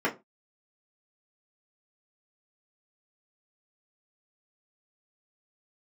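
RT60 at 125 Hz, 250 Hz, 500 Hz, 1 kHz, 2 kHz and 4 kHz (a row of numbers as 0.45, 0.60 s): 0.30, 0.25, 0.25, 0.25, 0.20, 0.15 s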